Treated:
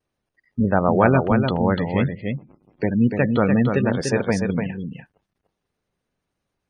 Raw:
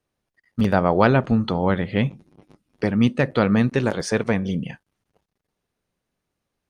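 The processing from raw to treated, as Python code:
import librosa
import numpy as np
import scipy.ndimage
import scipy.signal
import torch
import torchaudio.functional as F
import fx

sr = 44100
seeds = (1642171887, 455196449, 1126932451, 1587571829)

y = fx.spec_gate(x, sr, threshold_db=-25, keep='strong')
y = fx.vibrato(y, sr, rate_hz=0.56, depth_cents=18.0)
y = y + 10.0 ** (-5.5 / 20.0) * np.pad(y, (int(294 * sr / 1000.0), 0))[:len(y)]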